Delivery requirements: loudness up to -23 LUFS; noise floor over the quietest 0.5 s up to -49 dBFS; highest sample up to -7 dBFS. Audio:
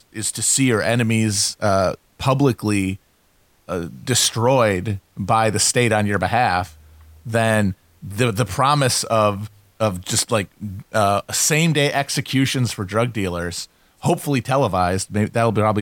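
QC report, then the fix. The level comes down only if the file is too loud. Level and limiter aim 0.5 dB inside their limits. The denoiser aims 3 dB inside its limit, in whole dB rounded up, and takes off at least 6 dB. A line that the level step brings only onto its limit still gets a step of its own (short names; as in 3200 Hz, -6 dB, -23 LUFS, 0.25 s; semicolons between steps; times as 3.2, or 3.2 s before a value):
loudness -19.0 LUFS: fail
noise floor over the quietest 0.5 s -59 dBFS: OK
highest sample -4.0 dBFS: fail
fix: gain -4.5 dB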